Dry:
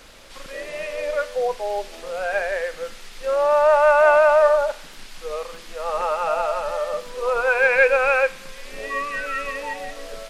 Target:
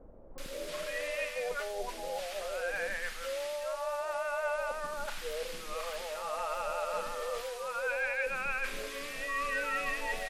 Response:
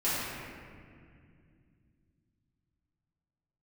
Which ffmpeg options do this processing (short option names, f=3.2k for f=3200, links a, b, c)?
-filter_complex "[0:a]areverse,acompressor=threshold=-29dB:ratio=8,areverse,crystalizer=i=3.5:c=0,acrossover=split=3100[a][b];[b]acompressor=threshold=-46dB:ratio=4:attack=1:release=60[c];[a][c]amix=inputs=2:normalize=0,acrossover=split=720[d][e];[e]adelay=380[f];[d][f]amix=inputs=2:normalize=0,volume=-2.5dB"